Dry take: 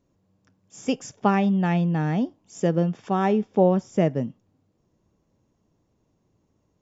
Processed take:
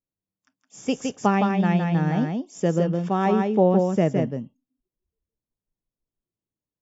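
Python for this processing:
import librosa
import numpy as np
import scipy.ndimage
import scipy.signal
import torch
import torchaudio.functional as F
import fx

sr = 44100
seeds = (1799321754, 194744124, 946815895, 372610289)

p1 = fx.noise_reduce_blind(x, sr, reduce_db=27)
y = p1 + fx.echo_single(p1, sr, ms=164, db=-4.0, dry=0)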